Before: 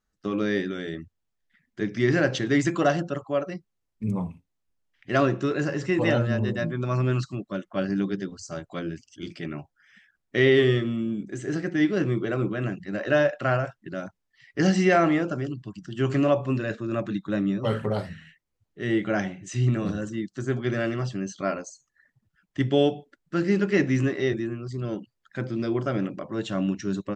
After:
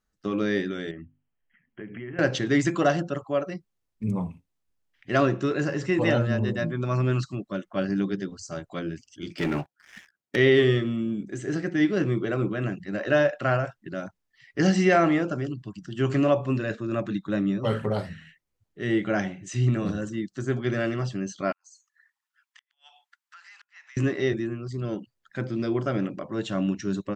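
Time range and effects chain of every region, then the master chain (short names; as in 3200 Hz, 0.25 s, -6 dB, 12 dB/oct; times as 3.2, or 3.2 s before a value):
0.91–2.19 notches 50/100/150/200/250/300/350 Hz + compressor, threshold -35 dBFS + brick-wall FIR low-pass 3300 Hz
9.38–10.36 HPF 150 Hz + sample leveller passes 3
21.52–23.97 steep high-pass 890 Hz 48 dB/oct + compressor, threshold -47 dBFS + flipped gate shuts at -37 dBFS, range -35 dB
whole clip: dry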